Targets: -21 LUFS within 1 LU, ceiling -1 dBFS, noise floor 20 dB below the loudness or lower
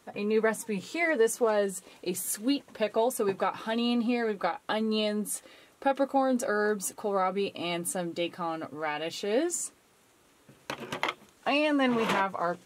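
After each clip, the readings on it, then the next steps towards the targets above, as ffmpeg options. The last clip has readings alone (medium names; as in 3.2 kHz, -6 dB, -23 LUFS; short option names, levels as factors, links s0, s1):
loudness -29.5 LUFS; peak level -10.5 dBFS; loudness target -21.0 LUFS
-> -af "volume=2.66"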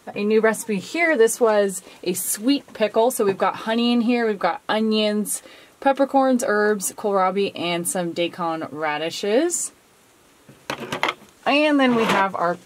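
loudness -21.0 LUFS; peak level -2.0 dBFS; noise floor -54 dBFS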